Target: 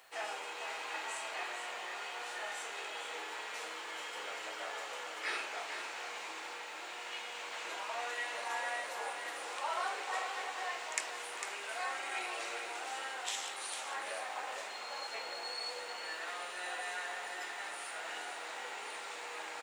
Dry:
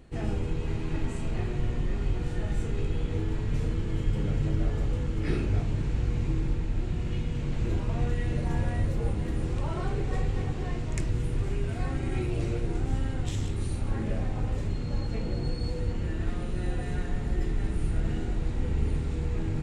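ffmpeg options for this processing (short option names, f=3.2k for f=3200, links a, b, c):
-af "highpass=f=740:w=0.5412,highpass=f=740:w=1.3066,acrusher=bits=11:mix=0:aa=0.000001,aecho=1:1:451:0.398,volume=5dB"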